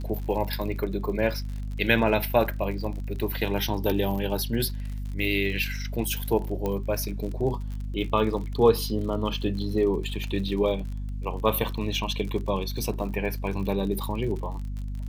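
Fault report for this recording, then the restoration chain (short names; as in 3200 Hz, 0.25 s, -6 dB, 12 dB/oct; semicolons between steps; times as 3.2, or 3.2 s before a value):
crackle 52/s -34 dBFS
hum 50 Hz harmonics 5 -32 dBFS
6.66 pop -16 dBFS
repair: de-click; de-hum 50 Hz, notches 5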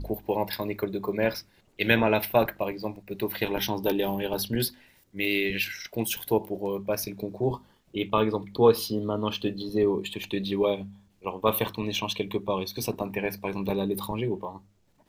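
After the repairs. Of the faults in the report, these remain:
6.66 pop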